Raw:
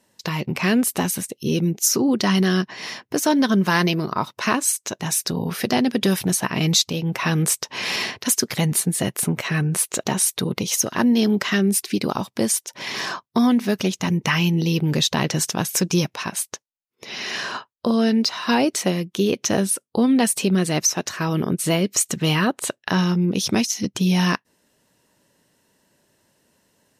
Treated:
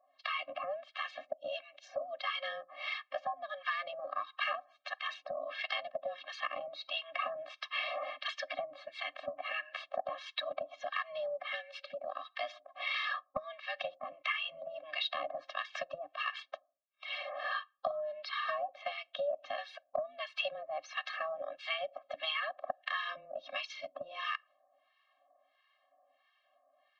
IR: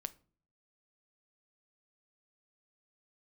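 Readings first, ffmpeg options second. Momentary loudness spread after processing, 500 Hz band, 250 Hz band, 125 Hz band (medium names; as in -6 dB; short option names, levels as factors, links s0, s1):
6 LU, -13.5 dB, under -40 dB, under -40 dB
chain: -filter_complex "[0:a]asplit=2[s0][s1];[1:a]atrim=start_sample=2205,lowpass=6700[s2];[s1][s2]afir=irnorm=-1:irlink=0,volume=0.447[s3];[s0][s3]amix=inputs=2:normalize=0,acrossover=split=910[s4][s5];[s4]aeval=exprs='val(0)*(1-1/2+1/2*cos(2*PI*1.5*n/s))':c=same[s6];[s5]aeval=exprs='val(0)*(1-1/2-1/2*cos(2*PI*1.5*n/s))':c=same[s7];[s6][s7]amix=inputs=2:normalize=0,highpass=f=180:t=q:w=0.5412,highpass=f=180:t=q:w=1.307,lowpass=f=3500:t=q:w=0.5176,lowpass=f=3500:t=q:w=0.7071,lowpass=f=3500:t=q:w=1.932,afreqshift=160,acompressor=threshold=0.0398:ratio=8,afftfilt=real='re*eq(mod(floor(b*sr/1024/260),2),0)':imag='im*eq(mod(floor(b*sr/1024/260),2),0)':win_size=1024:overlap=0.75"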